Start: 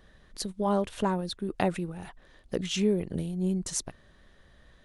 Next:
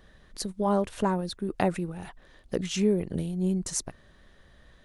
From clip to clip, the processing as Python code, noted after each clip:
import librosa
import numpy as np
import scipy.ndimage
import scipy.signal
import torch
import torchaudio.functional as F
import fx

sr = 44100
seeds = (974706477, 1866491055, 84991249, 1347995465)

y = fx.dynamic_eq(x, sr, hz=3300.0, q=2.0, threshold_db=-51.0, ratio=4.0, max_db=-5)
y = y * 10.0 ** (1.5 / 20.0)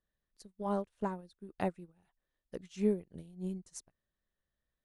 y = fx.upward_expand(x, sr, threshold_db=-39.0, expansion=2.5)
y = y * 10.0 ** (-4.5 / 20.0)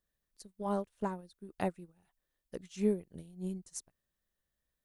y = fx.high_shelf(x, sr, hz=6600.0, db=7.5)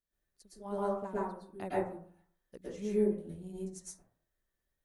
y = fx.rev_plate(x, sr, seeds[0], rt60_s=0.52, hf_ratio=0.35, predelay_ms=100, drr_db=-9.0)
y = y * 10.0 ** (-8.5 / 20.0)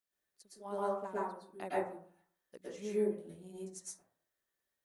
y = fx.highpass(x, sr, hz=470.0, slope=6)
y = y * 10.0 ** (1.0 / 20.0)